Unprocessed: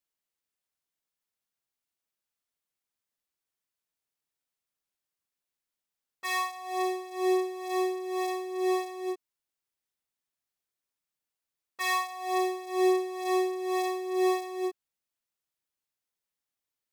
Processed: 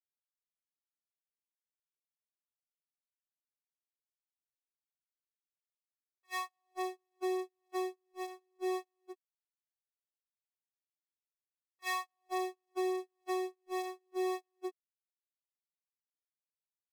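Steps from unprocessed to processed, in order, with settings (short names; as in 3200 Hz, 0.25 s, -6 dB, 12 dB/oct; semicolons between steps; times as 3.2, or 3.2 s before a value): gate -27 dBFS, range -46 dB; compressor 3:1, threshold -41 dBFS, peak gain reduction 15 dB; gain +4.5 dB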